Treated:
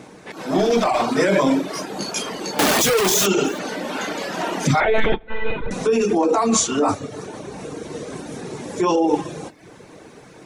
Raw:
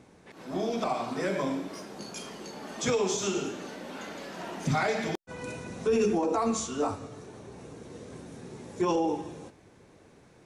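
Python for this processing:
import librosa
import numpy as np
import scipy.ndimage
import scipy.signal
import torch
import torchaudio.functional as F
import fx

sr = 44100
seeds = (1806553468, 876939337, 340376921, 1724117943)

p1 = fx.clip_1bit(x, sr, at=(2.59, 3.26))
p2 = fx.low_shelf(p1, sr, hz=120.0, db=-11.0)
p3 = fx.over_compress(p2, sr, threshold_db=-31.0, ratio=-0.5)
p4 = p2 + (p3 * librosa.db_to_amplitude(3.0))
p5 = fx.clip_hard(p4, sr, threshold_db=-19.5, at=(0.58, 1.13))
p6 = fx.lpc_monotone(p5, sr, seeds[0], pitch_hz=220.0, order=16, at=(4.8, 5.71))
p7 = p6 + fx.echo_single(p6, sr, ms=328, db=-23.5, dry=0)
p8 = fx.room_shoebox(p7, sr, seeds[1], volume_m3=290.0, walls='furnished', distance_m=0.5)
p9 = fx.dereverb_blind(p8, sr, rt60_s=0.58)
p10 = fx.end_taper(p9, sr, db_per_s=360.0)
y = p10 * librosa.db_to_amplitude(6.5)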